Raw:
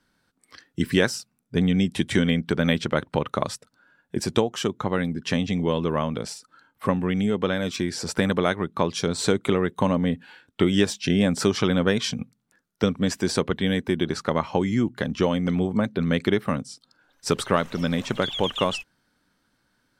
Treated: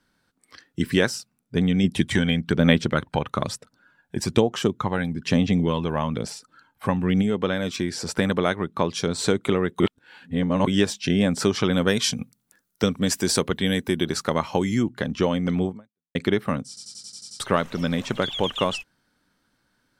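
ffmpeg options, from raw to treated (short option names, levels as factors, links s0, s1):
-filter_complex "[0:a]asplit=3[s0][s1][s2];[s0]afade=t=out:st=1.83:d=0.02[s3];[s1]aphaser=in_gain=1:out_gain=1:delay=1.3:decay=0.43:speed=1.1:type=sinusoidal,afade=t=in:st=1.83:d=0.02,afade=t=out:st=7.21:d=0.02[s4];[s2]afade=t=in:st=7.21:d=0.02[s5];[s3][s4][s5]amix=inputs=3:normalize=0,asettb=1/sr,asplit=3[s6][s7][s8];[s6]atrim=end=11.734[s9];[s7]atrim=start=11.73:end=14.83,asetpts=PTS-STARTPTS,afade=t=in:d=0.004:c=qsin,afade=t=out:st=3.096:d=0.004:c=qsin,aemphasis=mode=production:type=50kf[s10];[s8]atrim=start=14.826[s11];[s9][s10]acrossfade=d=0.004:c1=hsin:c2=qsin[s12];[s12][s11]acrossfade=d=0.004:c1=qsin:c2=hsin,asplit=12[s13][s14][s15][s16][s17][s18][s19][s20][s21][s22][s23][s24];[s13]atrim=end=9.802[s25];[s14]atrim=start=9.798:end=10.672,asetpts=PTS-STARTPTS,areverse[s26];[s15]atrim=start=10.668:end=16.15,asetpts=PTS-STARTPTS,afade=t=out:st=5.022:d=0.46:c=exp[s27];[s16]atrim=start=16.15:end=16.772,asetpts=PTS-STARTPTS,afade=t=in:d=0.004:c=hsin[s28];[s17]atrim=start=16.678:end=16.772[s29];[s18]atrim=start=16.678:end=16.772[s30];[s19]atrim=start=16.678:end=16.772[s31];[s20]atrim=start=16.678:end=16.772[s32];[s21]atrim=start=16.678:end=16.772[s33];[s22]atrim=start=16.678:end=16.772[s34];[s23]atrim=start=16.678:end=16.772[s35];[s24]atrim=start=17.398[s36];[s25][s26]acrossfade=d=0.004:c1=hsin:c2=hsin[s37];[s27][s28]concat=n=2:v=0:a=1[s38];[s37][s38]acrossfade=d=0.004:c1=hsin:c2=hsin[s39];[s39][s29]acrossfade=d=0.004:c1=hsin:c2=hsin[s40];[s40][s30]acrossfade=d=0.004:c1=hsin:c2=hsin[s41];[s41][s31]acrossfade=d=0.004:c1=hsin:c2=hsin[s42];[s42][s32]acrossfade=d=0.004:c1=hsin:c2=hsin[s43];[s43][s33]acrossfade=d=0.004:c1=hsin:c2=hsin[s44];[s44][s34]acrossfade=d=0.004:c1=hsin:c2=hsin[s45];[s45][s35]acrossfade=d=0.004:c1=hsin:c2=hsin[s46];[s46][s36]acrossfade=d=0.004:c1=hsin:c2=hsin"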